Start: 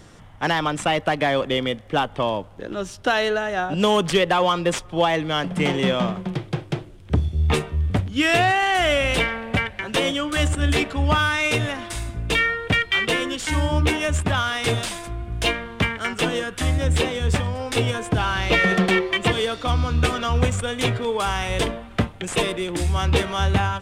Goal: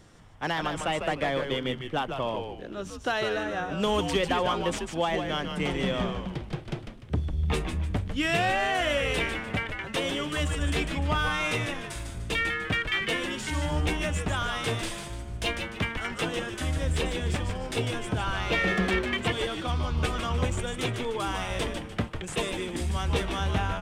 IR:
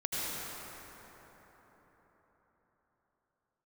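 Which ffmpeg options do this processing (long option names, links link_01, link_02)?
-filter_complex "[0:a]asplit=5[link_01][link_02][link_03][link_04][link_05];[link_02]adelay=149,afreqshift=-130,volume=-6dB[link_06];[link_03]adelay=298,afreqshift=-260,volume=-15.1dB[link_07];[link_04]adelay=447,afreqshift=-390,volume=-24.2dB[link_08];[link_05]adelay=596,afreqshift=-520,volume=-33.4dB[link_09];[link_01][link_06][link_07][link_08][link_09]amix=inputs=5:normalize=0,volume=-8dB"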